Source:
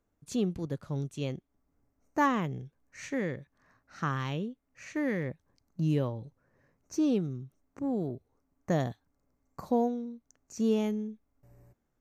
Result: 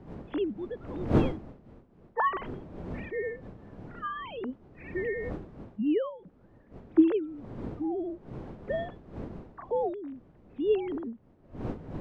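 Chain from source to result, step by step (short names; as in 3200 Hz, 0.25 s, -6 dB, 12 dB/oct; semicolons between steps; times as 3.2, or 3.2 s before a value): sine-wave speech; wind noise 320 Hz -39 dBFS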